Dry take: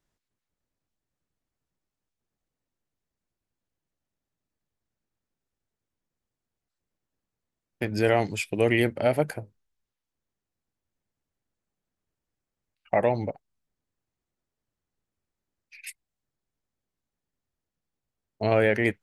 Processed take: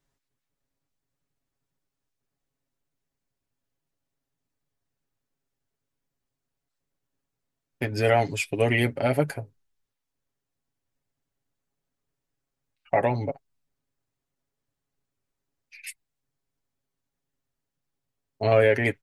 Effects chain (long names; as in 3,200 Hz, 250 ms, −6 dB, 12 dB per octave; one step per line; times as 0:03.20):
comb filter 7.3 ms, depth 65%